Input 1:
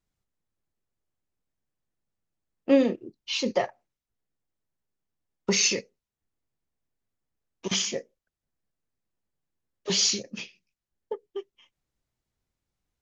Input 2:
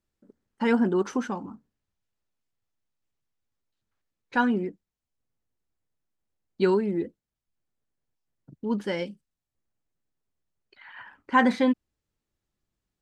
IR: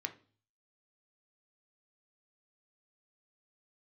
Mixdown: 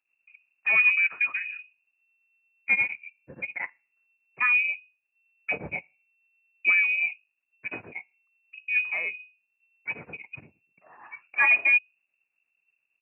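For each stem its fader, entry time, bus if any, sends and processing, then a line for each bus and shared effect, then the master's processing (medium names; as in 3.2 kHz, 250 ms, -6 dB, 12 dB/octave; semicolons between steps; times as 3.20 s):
-2.0 dB, 0.00 s, send -15 dB, tremolo of two beating tones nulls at 8.5 Hz
-5.0 dB, 0.05 s, no send, bass shelf 310 Hz +12 dB; hum notches 50/100/150/200 Hz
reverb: on, RT60 0.40 s, pre-delay 3 ms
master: frequency inversion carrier 2.7 kHz; high-pass 99 Hz 24 dB/octave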